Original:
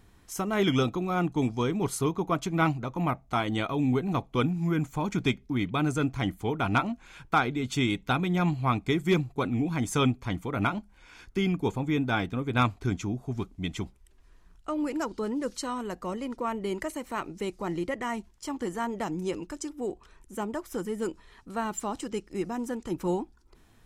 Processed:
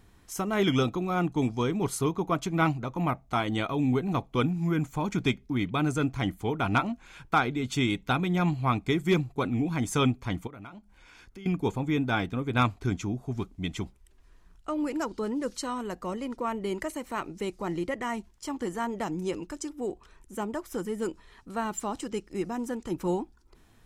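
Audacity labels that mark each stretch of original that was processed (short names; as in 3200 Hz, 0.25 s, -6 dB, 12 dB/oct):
10.470000	11.460000	compressor 2.5:1, threshold -50 dBFS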